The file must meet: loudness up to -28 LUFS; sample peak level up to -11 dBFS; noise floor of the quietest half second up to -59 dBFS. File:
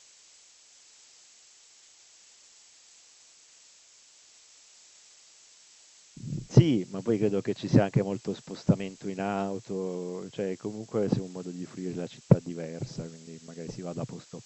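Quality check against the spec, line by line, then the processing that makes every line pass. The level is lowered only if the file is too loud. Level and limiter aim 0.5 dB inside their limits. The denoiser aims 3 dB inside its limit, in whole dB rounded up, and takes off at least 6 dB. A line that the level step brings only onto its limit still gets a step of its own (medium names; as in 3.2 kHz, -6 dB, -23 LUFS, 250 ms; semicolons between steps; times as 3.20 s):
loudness -29.5 LUFS: pass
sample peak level -3.5 dBFS: fail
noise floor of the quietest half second -57 dBFS: fail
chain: noise reduction 6 dB, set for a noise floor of -57 dBFS; peak limiter -11.5 dBFS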